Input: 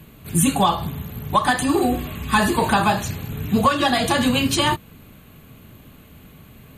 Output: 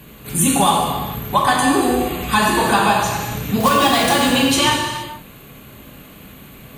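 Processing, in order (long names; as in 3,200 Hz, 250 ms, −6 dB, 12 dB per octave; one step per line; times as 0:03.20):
bass and treble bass −6 dB, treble +1 dB
in parallel at −1 dB: downward compressor, threshold −29 dBFS, peak gain reduction 16 dB
0:03.60–0:04.16: on the sum: log-companded quantiser 4 bits
reverb whose tail is shaped and stops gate 490 ms falling, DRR −1.5 dB
level −1 dB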